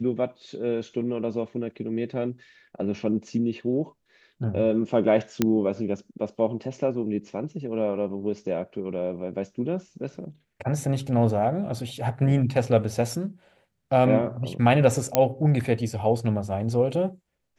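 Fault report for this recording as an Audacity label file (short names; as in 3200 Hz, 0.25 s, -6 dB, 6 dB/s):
5.420000	5.420000	pop -7 dBFS
15.150000	15.150000	pop -4 dBFS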